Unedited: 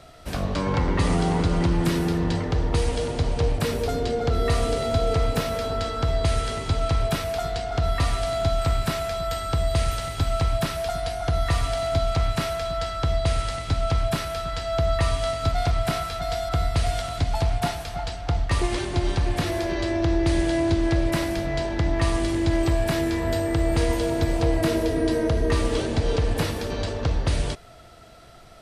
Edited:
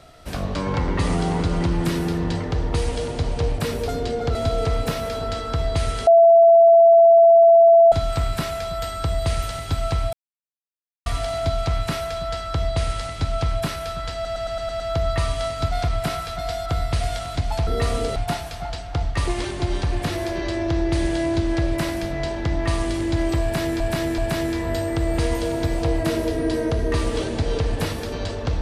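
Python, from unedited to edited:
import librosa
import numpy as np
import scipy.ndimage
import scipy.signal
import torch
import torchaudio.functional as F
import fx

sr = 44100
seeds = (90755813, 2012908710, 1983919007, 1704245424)

y = fx.edit(x, sr, fx.move(start_s=4.35, length_s=0.49, to_s=17.5),
    fx.bleep(start_s=6.56, length_s=1.85, hz=671.0, db=-8.0),
    fx.silence(start_s=10.62, length_s=0.93),
    fx.stutter(start_s=14.63, slice_s=0.11, count=7),
    fx.repeat(start_s=22.76, length_s=0.38, count=3), tone=tone)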